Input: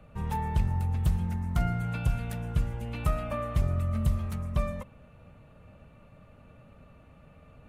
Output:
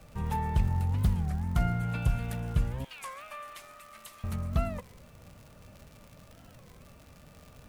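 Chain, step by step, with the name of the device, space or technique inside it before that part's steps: 2.86–4.24 Bessel high-pass 1700 Hz, order 2; warped LP (record warp 33 1/3 rpm, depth 250 cents; crackle 120/s -42 dBFS; pink noise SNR 32 dB)

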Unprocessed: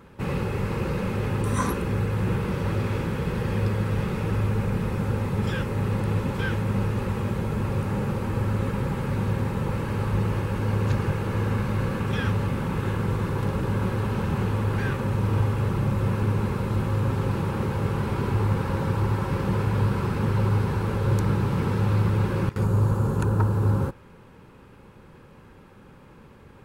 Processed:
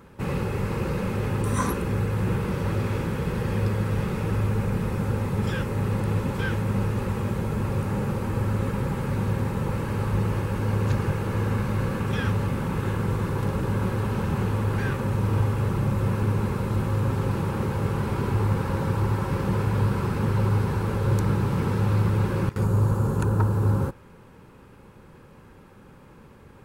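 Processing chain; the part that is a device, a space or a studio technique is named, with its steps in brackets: exciter from parts (in parallel at -7 dB: HPF 2800 Hz 6 dB/oct + soft clip -36 dBFS, distortion -16 dB + HPF 3500 Hz 12 dB/oct)

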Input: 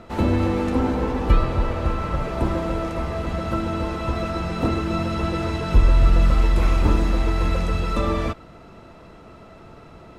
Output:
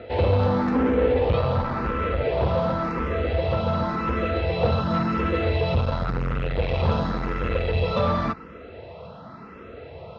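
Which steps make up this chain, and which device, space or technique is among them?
barber-pole phaser into a guitar amplifier (endless phaser +0.92 Hz; soft clip -22 dBFS, distortion -9 dB; speaker cabinet 77–4300 Hz, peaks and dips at 81 Hz +5 dB, 330 Hz -6 dB, 490 Hz +8 dB); gain +6 dB

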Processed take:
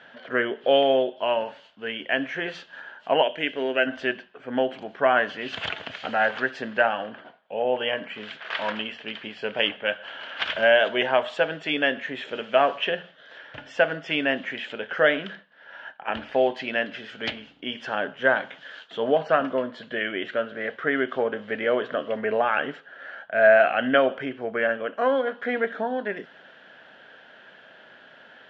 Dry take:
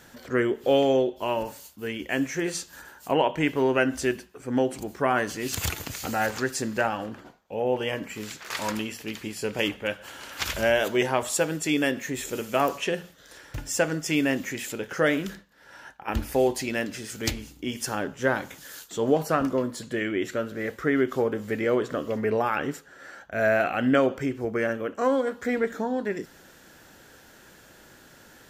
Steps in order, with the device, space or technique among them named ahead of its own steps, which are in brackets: 3.23–3.87 graphic EQ 125/1000/8000 Hz -10/-11/+8 dB; kitchen radio (speaker cabinet 230–3400 Hz, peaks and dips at 330 Hz -8 dB, 650 Hz +8 dB, 1600 Hz +7 dB, 3100 Hz +9 dB)

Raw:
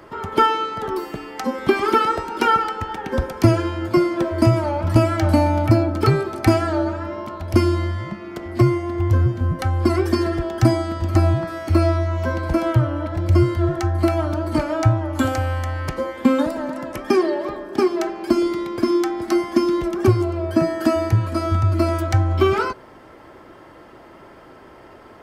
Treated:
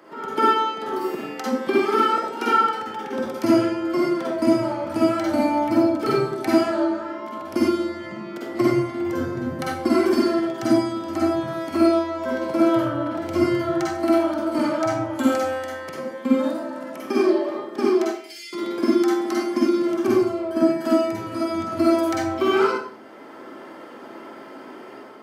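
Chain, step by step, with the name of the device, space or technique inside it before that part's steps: 18.05–18.53 steep high-pass 2000 Hz 48 dB/oct; far laptop microphone (reverb RT60 0.50 s, pre-delay 44 ms, DRR -4 dB; HPF 190 Hz 24 dB/oct; AGC gain up to 5 dB); gain -6 dB

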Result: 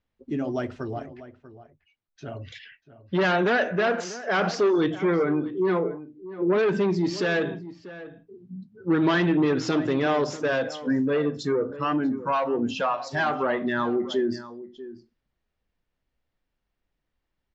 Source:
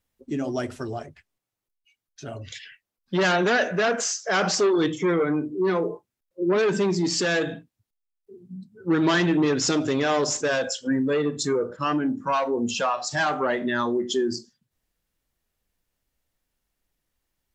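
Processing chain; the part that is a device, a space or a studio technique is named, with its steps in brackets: shout across a valley (air absorption 200 m; outdoor echo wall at 110 m, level -15 dB)

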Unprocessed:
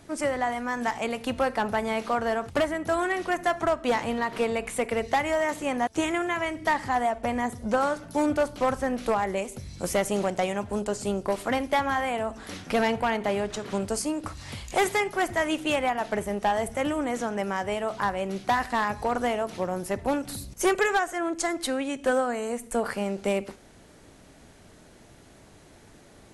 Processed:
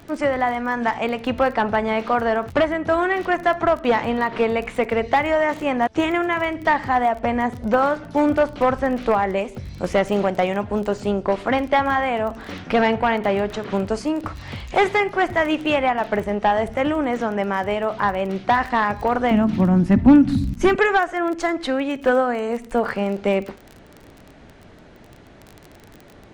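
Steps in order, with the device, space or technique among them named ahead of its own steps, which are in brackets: lo-fi chain (LPF 3300 Hz 12 dB/oct; wow and flutter 23 cents; crackle 20/s -35 dBFS); 19.31–20.76 resonant low shelf 340 Hz +10 dB, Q 3; gain +6.5 dB

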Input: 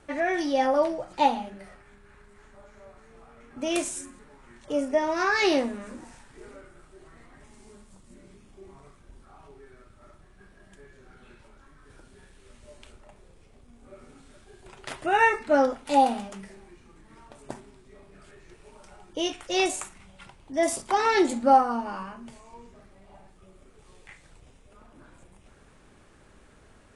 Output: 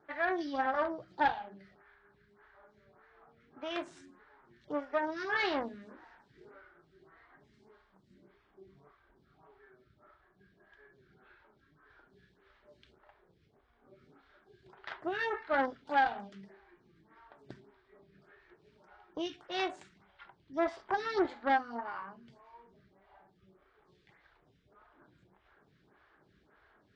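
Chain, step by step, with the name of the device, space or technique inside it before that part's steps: bell 6500 Hz -3.5 dB 0.6 oct; vibe pedal into a guitar amplifier (photocell phaser 1.7 Hz; tube stage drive 21 dB, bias 0.8; speaker cabinet 75–4600 Hz, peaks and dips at 85 Hz -7 dB, 240 Hz -8 dB, 530 Hz -7 dB, 1600 Hz +5 dB, 2600 Hz -6 dB)

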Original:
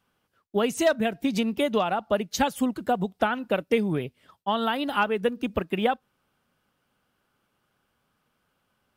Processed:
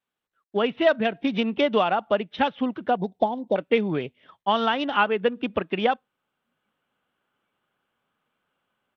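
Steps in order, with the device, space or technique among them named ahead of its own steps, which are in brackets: 2.97–3.56 inverse Chebyshev band-stop 1300–2700 Hz, stop band 40 dB; spectral noise reduction 9 dB; Bluetooth headset (HPF 250 Hz 6 dB/oct; AGC gain up to 12 dB; downsampling 8000 Hz; gain -5.5 dB; SBC 64 kbps 32000 Hz)

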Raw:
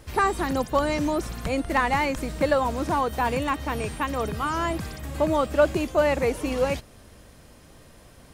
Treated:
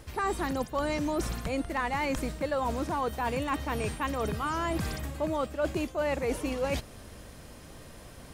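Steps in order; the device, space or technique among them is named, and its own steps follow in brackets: compression on the reversed sound (reverse; compressor 6:1, threshold -30 dBFS, peak gain reduction 15.5 dB; reverse); gain +2.5 dB

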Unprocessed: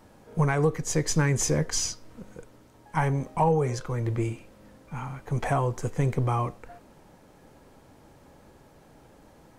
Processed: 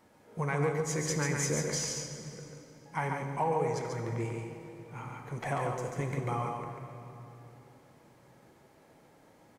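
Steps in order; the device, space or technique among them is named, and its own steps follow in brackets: PA in a hall (HPF 180 Hz 6 dB/oct; bell 2100 Hz +5.5 dB 0.24 oct; echo 0.141 s -4.5 dB; reverb RT60 3.1 s, pre-delay 7 ms, DRR 5.5 dB); gain -7 dB

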